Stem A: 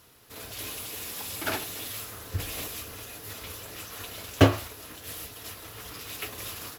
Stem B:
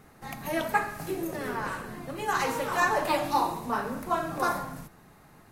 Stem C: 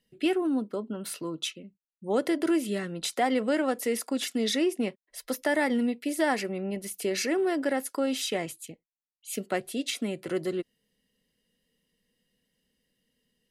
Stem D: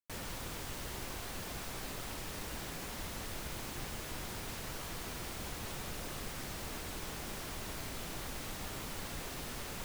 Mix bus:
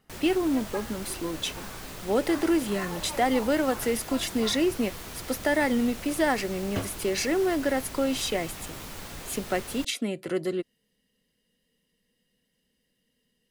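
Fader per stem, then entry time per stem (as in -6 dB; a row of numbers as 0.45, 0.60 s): -14.0, -14.0, +1.5, +2.0 dB; 2.35, 0.00, 0.00, 0.00 s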